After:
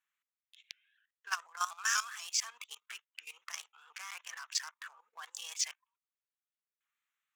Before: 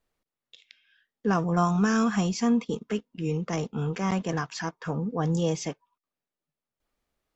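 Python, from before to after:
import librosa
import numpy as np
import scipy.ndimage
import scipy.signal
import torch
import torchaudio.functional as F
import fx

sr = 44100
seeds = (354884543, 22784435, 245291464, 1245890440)

y = fx.wiener(x, sr, points=9)
y = scipy.signal.sosfilt(scipy.signal.butter(4, 1200.0, 'highpass', fs=sr, output='sos'), y)
y = fx.tilt_eq(y, sr, slope=4.0)
y = fx.level_steps(y, sr, step_db=15)
y = fx.vibrato_shape(y, sr, shape='saw_up', rate_hz=4.1, depth_cents=100.0)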